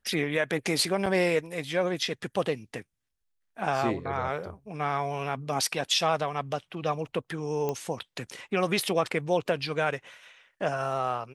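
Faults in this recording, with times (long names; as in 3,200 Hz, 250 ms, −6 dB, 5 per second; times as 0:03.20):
0:01.06: drop-out 4.6 ms
0:07.69: click −17 dBFS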